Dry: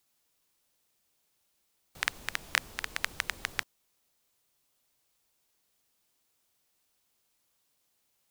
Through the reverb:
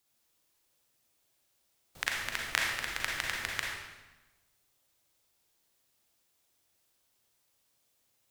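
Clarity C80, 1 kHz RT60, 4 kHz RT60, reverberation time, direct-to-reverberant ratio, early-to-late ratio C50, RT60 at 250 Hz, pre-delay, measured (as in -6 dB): 3.0 dB, 1.1 s, 0.95 s, 1.1 s, -1.5 dB, 0.0 dB, 1.3 s, 35 ms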